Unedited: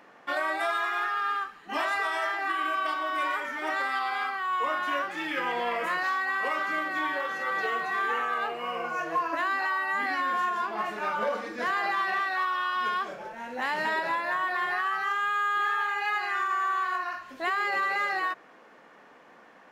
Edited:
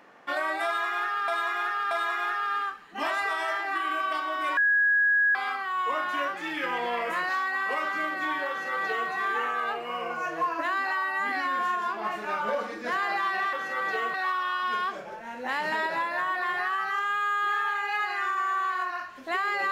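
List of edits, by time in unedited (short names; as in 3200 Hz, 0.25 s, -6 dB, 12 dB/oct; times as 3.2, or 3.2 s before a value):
0.65–1.28 loop, 3 plays
3.31–4.09 bleep 1660 Hz -19 dBFS
7.23–7.84 copy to 12.27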